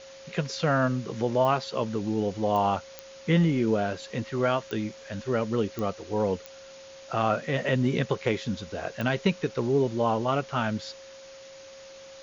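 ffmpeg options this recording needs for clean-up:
-af "adeclick=t=4,bandreject=f=540:w=30,afwtdn=0.0045"

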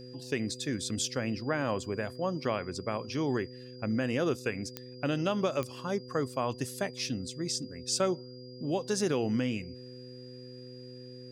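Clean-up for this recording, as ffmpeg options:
-af "adeclick=t=4,bandreject=f=125.8:t=h:w=4,bandreject=f=251.6:t=h:w=4,bandreject=f=377.4:t=h:w=4,bandreject=f=503.2:t=h:w=4,bandreject=f=4.8k:w=30"

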